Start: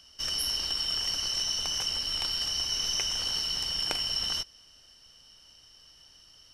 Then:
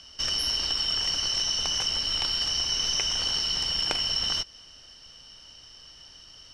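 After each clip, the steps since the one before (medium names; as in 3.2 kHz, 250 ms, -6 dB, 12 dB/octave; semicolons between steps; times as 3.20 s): low-pass 6.8 kHz 12 dB/octave; compression 1.5:1, threshold -37 dBFS, peak gain reduction 4.5 dB; trim +7.5 dB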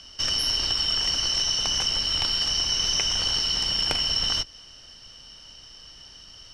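octave divider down 2 oct, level +1 dB; wavefolder -11.5 dBFS; trim +2.5 dB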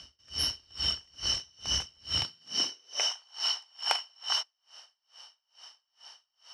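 high-pass sweep 68 Hz -> 840 Hz, 2.01–3.15 s; logarithmic tremolo 2.3 Hz, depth 36 dB; trim -2 dB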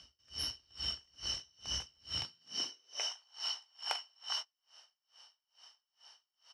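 doubling 17 ms -13.5 dB; trim -8.5 dB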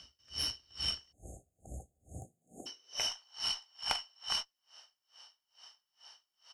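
spectral selection erased 1.12–2.67 s, 800–6400 Hz; Chebyshev shaper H 4 -19 dB, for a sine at -19 dBFS; trim +3 dB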